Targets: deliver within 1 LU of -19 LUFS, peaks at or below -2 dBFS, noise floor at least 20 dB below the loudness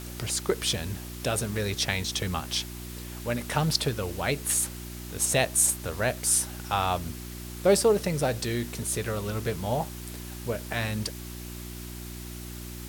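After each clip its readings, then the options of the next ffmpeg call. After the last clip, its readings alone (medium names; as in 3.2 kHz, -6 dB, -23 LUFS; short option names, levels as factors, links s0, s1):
hum 60 Hz; highest harmonic 360 Hz; hum level -37 dBFS; noise floor -39 dBFS; noise floor target -48 dBFS; loudness -27.5 LUFS; peak level -7.5 dBFS; loudness target -19.0 LUFS
-> -af "bandreject=f=60:t=h:w=4,bandreject=f=120:t=h:w=4,bandreject=f=180:t=h:w=4,bandreject=f=240:t=h:w=4,bandreject=f=300:t=h:w=4,bandreject=f=360:t=h:w=4"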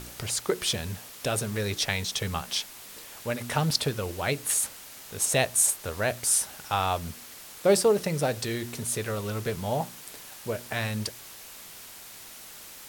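hum not found; noise floor -46 dBFS; noise floor target -48 dBFS
-> -af "afftdn=nr=6:nf=-46"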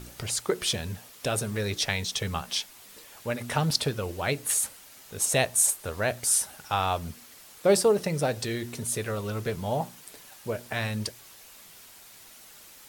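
noise floor -51 dBFS; loudness -27.5 LUFS; peak level -7.5 dBFS; loudness target -19.0 LUFS
-> -af "volume=2.66,alimiter=limit=0.794:level=0:latency=1"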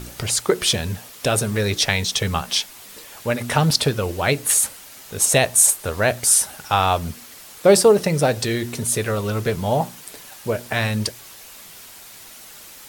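loudness -19.5 LUFS; peak level -2.0 dBFS; noise floor -42 dBFS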